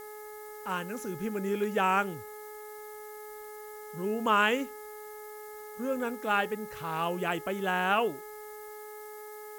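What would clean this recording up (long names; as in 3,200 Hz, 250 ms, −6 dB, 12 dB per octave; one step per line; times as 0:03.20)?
hum removal 423.5 Hz, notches 5
noise reduction from a noise print 30 dB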